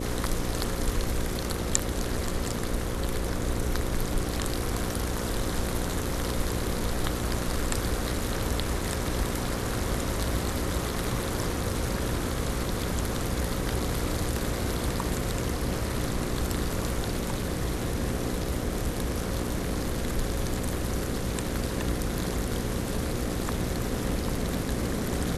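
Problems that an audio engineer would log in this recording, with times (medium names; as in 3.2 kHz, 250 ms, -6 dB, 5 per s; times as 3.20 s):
buzz 60 Hz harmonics 9 -34 dBFS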